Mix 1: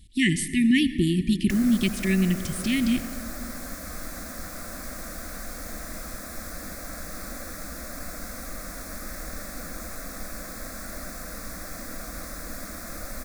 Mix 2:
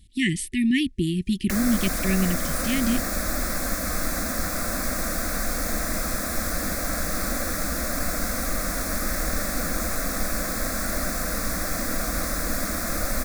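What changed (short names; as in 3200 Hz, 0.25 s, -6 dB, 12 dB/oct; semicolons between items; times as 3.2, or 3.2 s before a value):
background +10.0 dB; reverb: off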